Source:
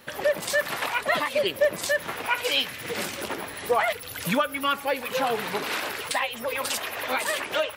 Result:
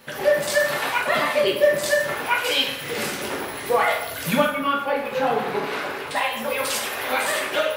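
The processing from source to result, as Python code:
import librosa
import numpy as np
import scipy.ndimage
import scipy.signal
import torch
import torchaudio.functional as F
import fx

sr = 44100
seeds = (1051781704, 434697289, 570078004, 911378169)

y = fx.high_shelf(x, sr, hz=3200.0, db=-12.0, at=(4.5, 6.16))
y = fx.rev_plate(y, sr, seeds[0], rt60_s=0.79, hf_ratio=0.75, predelay_ms=0, drr_db=-2.0)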